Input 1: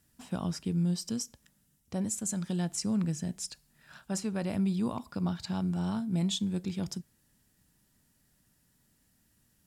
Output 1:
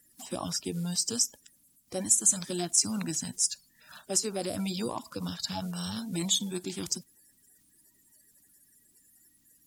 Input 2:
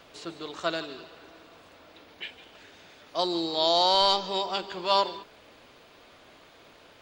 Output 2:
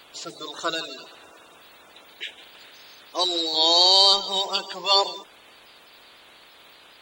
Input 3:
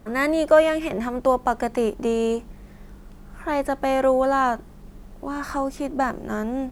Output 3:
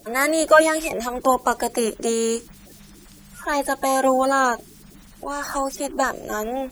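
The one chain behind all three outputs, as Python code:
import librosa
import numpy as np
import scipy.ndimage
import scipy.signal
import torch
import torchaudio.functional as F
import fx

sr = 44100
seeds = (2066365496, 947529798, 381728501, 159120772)

y = fx.spec_quant(x, sr, step_db=30)
y = fx.bass_treble(y, sr, bass_db=-9, treble_db=11)
y = F.gain(torch.from_numpy(y), 2.5).numpy()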